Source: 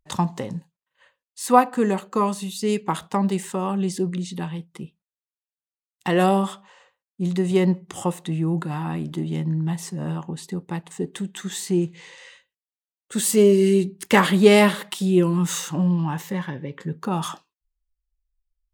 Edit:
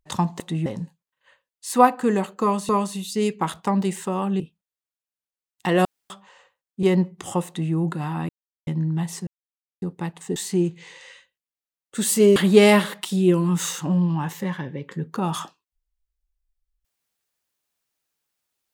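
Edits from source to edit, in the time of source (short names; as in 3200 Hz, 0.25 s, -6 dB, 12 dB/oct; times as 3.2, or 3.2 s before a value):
2.16–2.43 loop, 2 plays
3.87–4.81 cut
6.26–6.51 room tone
7.24–7.53 cut
8.17–8.43 copy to 0.4
8.99–9.37 mute
9.97–10.52 mute
11.06–11.53 cut
13.53–14.25 cut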